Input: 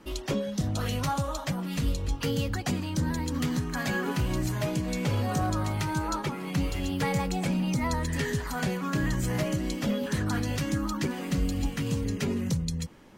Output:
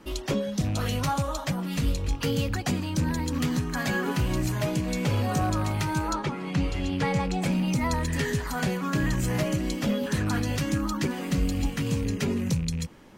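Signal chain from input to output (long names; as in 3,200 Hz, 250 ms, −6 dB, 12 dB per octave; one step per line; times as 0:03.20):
loose part that buzzes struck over −27 dBFS, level −36 dBFS
0:06.13–0:07.42: high-frequency loss of the air 63 metres
level +2 dB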